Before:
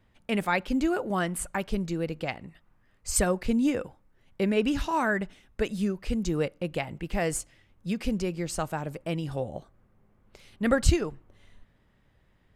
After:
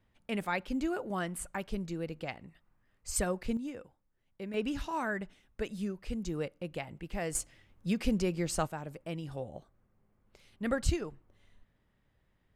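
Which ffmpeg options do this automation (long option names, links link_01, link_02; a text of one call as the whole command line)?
ffmpeg -i in.wav -af "asetnsamples=nb_out_samples=441:pad=0,asendcmd='3.57 volume volume -15dB;4.54 volume volume -8dB;7.35 volume volume -1dB;8.67 volume volume -8dB',volume=-7dB" out.wav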